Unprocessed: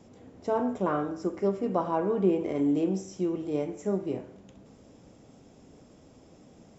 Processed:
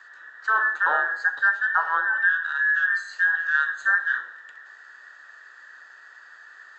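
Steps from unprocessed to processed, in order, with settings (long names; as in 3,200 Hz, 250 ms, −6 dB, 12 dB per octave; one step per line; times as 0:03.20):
frequency inversion band by band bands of 2,000 Hz
speech leveller 0.5 s
three-way crossover with the lows and the highs turned down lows −20 dB, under 310 Hz, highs −14 dB, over 5,600 Hz
level +5.5 dB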